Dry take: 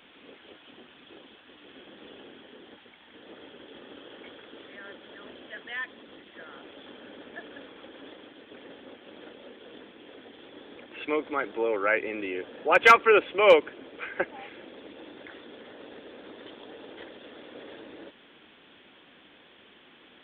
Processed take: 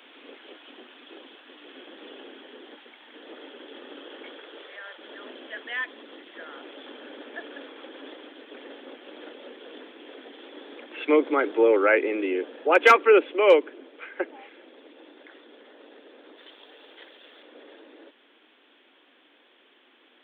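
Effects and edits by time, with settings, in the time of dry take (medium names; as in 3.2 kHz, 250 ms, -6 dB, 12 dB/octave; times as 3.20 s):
4.26–4.97 s: high-pass 210 Hz -> 650 Hz 24 dB/octave
16.37–17.43 s: tilt EQ +3 dB/octave
whole clip: steep high-pass 250 Hz 48 dB/octave; dynamic bell 340 Hz, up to +7 dB, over -41 dBFS, Q 0.99; gain riding within 4 dB 2 s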